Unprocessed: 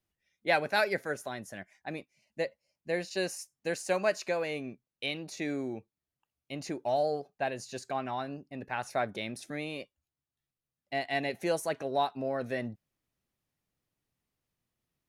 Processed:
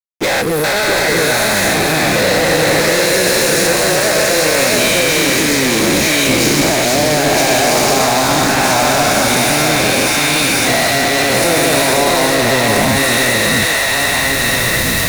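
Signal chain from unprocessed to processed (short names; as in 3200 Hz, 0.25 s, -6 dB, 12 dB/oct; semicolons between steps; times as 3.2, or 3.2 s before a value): spectral dilation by 0.48 s; recorder AGC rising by 11 dB/s; bell 780 Hz -7 dB 2.9 oct; thin delay 0.485 s, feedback 61%, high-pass 2000 Hz, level -4.5 dB; spectral gain 0.41–0.65, 500–8800 Hz -23 dB; compressor 3:1, threshold -41 dBFS, peak gain reduction 16 dB; fuzz box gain 56 dB, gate -55 dBFS; bell 2900 Hz -6.5 dB 0.23 oct; echo with dull and thin repeats by turns 0.666 s, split 1400 Hz, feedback 75%, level -2.5 dB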